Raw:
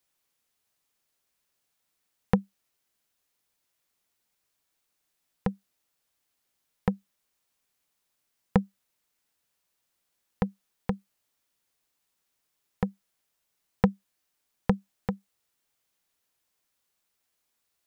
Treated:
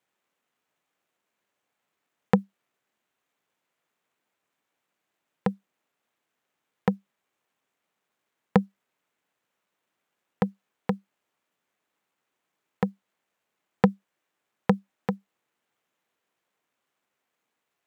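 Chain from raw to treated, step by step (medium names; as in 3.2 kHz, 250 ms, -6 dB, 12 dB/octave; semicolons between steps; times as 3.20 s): median filter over 9 samples; high-pass 170 Hz 12 dB/octave; trim +4.5 dB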